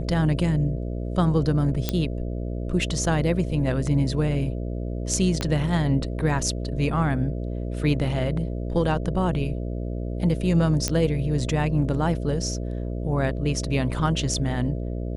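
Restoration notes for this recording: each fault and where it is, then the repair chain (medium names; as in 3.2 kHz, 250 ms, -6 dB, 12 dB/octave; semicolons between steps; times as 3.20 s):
buzz 60 Hz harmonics 11 -29 dBFS
1.89 s: pop -8 dBFS
5.41 s: pop -12 dBFS
10.88 s: pop -8 dBFS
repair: de-click; de-hum 60 Hz, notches 11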